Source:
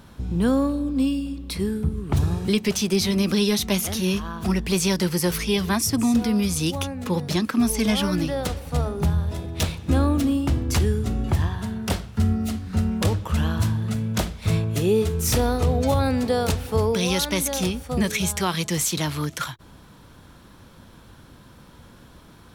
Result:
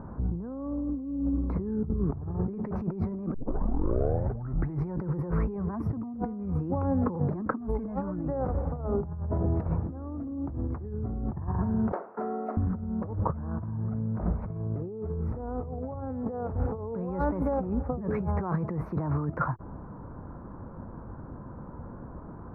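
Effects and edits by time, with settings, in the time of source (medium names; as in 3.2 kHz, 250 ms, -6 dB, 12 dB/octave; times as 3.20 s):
3.34 s: tape start 1.66 s
11.92–12.57 s: high-pass 390 Hz 24 dB/octave
whole clip: inverse Chebyshev low-pass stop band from 3 kHz, stop band 50 dB; compressor with a negative ratio -31 dBFS, ratio -1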